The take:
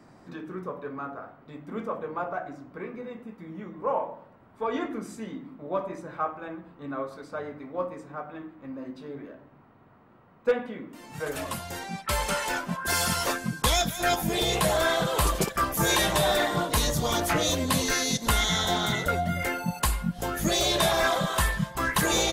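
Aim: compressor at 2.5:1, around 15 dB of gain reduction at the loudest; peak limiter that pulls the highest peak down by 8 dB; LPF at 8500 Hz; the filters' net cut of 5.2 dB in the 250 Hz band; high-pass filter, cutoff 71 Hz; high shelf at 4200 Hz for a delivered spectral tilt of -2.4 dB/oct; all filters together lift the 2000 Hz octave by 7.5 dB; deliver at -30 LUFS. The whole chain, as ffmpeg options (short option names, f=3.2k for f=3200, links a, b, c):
-af "highpass=71,lowpass=8.5k,equalizer=f=250:t=o:g=-8,equalizer=f=2k:t=o:g=8.5,highshelf=f=4.2k:g=5,acompressor=threshold=-41dB:ratio=2.5,volume=9dB,alimiter=limit=-18.5dB:level=0:latency=1"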